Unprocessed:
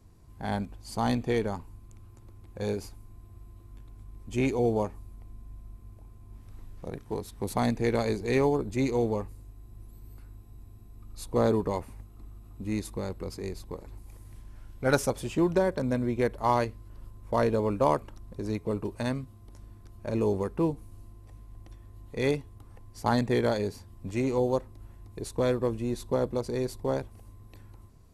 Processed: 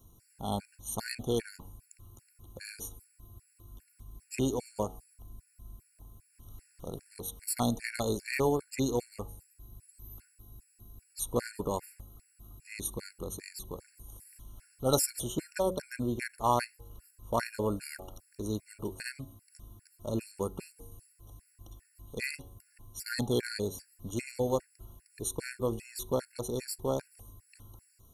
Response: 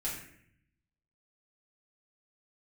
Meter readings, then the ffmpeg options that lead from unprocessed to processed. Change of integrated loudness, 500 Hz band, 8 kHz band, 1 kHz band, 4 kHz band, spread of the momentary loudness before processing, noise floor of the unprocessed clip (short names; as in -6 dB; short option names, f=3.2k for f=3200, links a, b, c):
-5.0 dB, -6.5 dB, +7.0 dB, -4.5 dB, +1.0 dB, 19 LU, -51 dBFS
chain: -af "aemphasis=mode=production:type=75fm,bandreject=f=93.03:t=h:w=4,bandreject=f=186.06:t=h:w=4,bandreject=f=279.09:t=h:w=4,bandreject=f=372.12:t=h:w=4,bandreject=f=465.15:t=h:w=4,bandreject=f=558.18:t=h:w=4,bandreject=f=651.21:t=h:w=4,bandreject=f=744.24:t=h:w=4,bandreject=f=837.27:t=h:w=4,afftfilt=real='re*gt(sin(2*PI*2.5*pts/sr)*(1-2*mod(floor(b*sr/1024/1400),2)),0)':imag='im*gt(sin(2*PI*2.5*pts/sr)*(1-2*mod(floor(b*sr/1024/1400),2)),0)':win_size=1024:overlap=0.75,volume=-1.5dB"